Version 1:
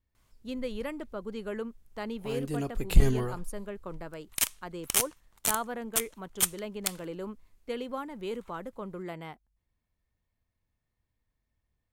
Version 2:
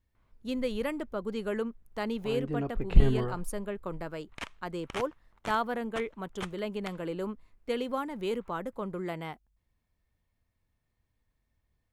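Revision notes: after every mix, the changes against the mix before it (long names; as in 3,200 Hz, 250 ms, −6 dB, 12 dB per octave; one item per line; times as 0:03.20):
speech +3.5 dB
background: add low-pass filter 1,900 Hz 12 dB per octave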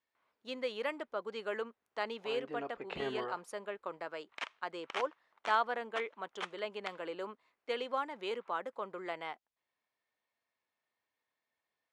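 master: add band-pass filter 570–5,200 Hz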